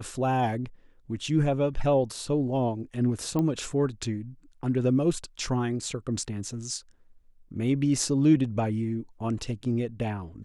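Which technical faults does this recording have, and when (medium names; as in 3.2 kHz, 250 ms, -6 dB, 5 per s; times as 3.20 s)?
3.39 s: pop -17 dBFS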